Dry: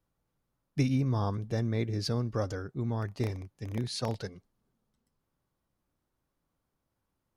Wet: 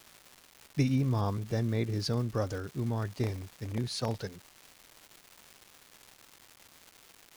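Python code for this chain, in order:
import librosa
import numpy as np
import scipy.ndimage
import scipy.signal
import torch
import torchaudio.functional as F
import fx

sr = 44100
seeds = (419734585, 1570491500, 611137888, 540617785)

y = fx.dmg_crackle(x, sr, seeds[0], per_s=550.0, level_db=-41.0)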